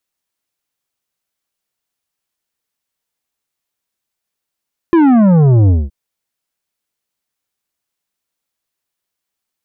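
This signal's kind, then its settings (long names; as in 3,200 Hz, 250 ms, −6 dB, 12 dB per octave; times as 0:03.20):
bass drop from 350 Hz, over 0.97 s, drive 10 dB, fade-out 0.21 s, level −7 dB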